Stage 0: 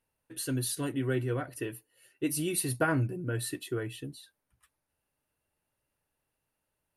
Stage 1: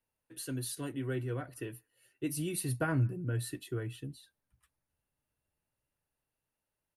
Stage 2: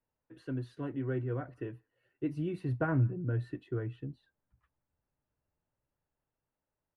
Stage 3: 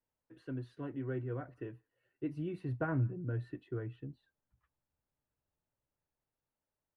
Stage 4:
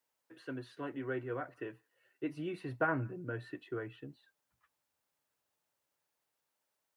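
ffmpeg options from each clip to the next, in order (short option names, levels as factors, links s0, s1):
-filter_complex "[0:a]acrossover=split=200|1100|1800[s0][s1][s2][s3];[s0]dynaudnorm=f=300:g=11:m=2.37[s4];[s2]aecho=1:1:172:0.0841[s5];[s4][s1][s5][s3]amix=inputs=4:normalize=0,volume=0.501"
-af "lowpass=1500,volume=1.19"
-af "bass=f=250:g=-1,treble=f=4000:g=-4,volume=0.668"
-af "highpass=f=820:p=1,volume=2.82"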